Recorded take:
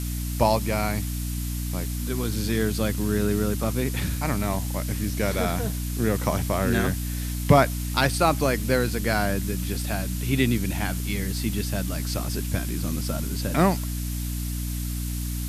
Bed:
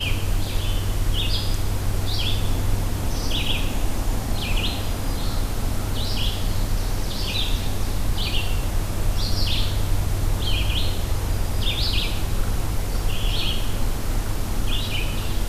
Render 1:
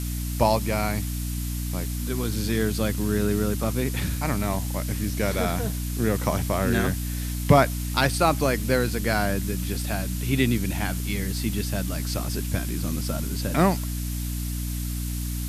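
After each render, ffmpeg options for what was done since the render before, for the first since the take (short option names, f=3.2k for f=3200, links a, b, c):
-af anull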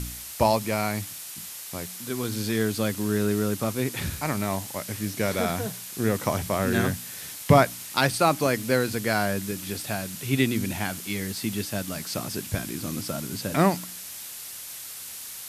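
-af "bandreject=f=60:t=h:w=4,bandreject=f=120:t=h:w=4,bandreject=f=180:t=h:w=4,bandreject=f=240:t=h:w=4,bandreject=f=300:t=h:w=4"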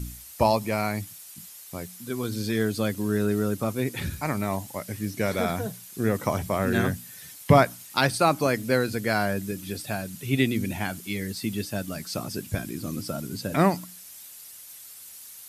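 -af "afftdn=nr=10:nf=-39"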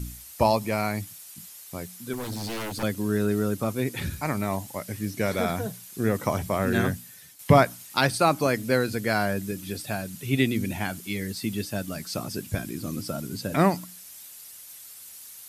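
-filter_complex "[0:a]asettb=1/sr,asplit=3[a][b][c];[a]atrim=end=2.134[d];[b]atrim=start=2.13:end=2.83,asetpts=PTS-STARTPTS,afade=t=in:d=0.004:c=qsin,afade=t=out:st=0.696:d=0.004:c=qsin,aeval=exprs='0.0447*(abs(mod(val(0)/0.0447+3,4)-2)-1)':c=same[e];[c]atrim=start=2.826[f];[d][e]acrossfade=d=0.004:c1=hsin:c2=qsin[g];[g][f]acrossfade=d=0.004:c1=qsin:c2=hsin,asplit=2[h][i];[h]atrim=end=7.39,asetpts=PTS-STARTPTS,afade=t=out:st=6.89:d=0.5:silence=0.334965[j];[i]atrim=start=7.39,asetpts=PTS-STARTPTS,afade=t=in:d=0.004:c=hsin:silence=0.334965[k];[j][k]concat=n=2:v=0:a=1"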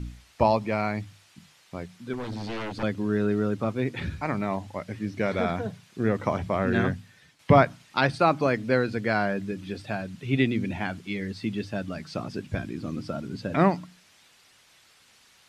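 -af "lowpass=3.3k,bandreject=f=50:t=h:w=6,bandreject=f=100:t=h:w=6,bandreject=f=150:t=h:w=6"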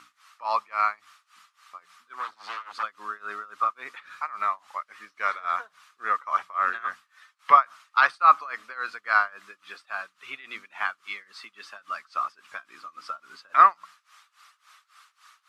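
-af "tremolo=f=3.6:d=0.92,highpass=f=1.2k:t=q:w=8.7"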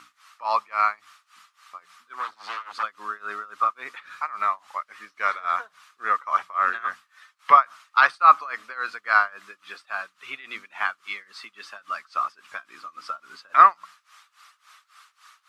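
-af "volume=2.5dB,alimiter=limit=-2dB:level=0:latency=1"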